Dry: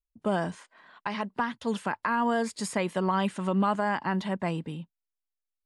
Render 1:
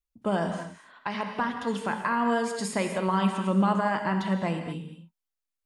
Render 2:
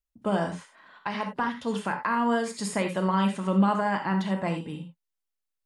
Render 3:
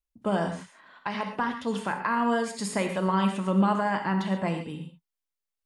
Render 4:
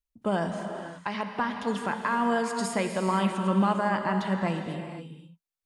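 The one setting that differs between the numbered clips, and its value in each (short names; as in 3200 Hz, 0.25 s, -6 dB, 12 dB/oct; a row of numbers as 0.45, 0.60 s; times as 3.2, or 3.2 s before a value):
non-linear reverb, gate: 0.27, 0.11, 0.16, 0.54 s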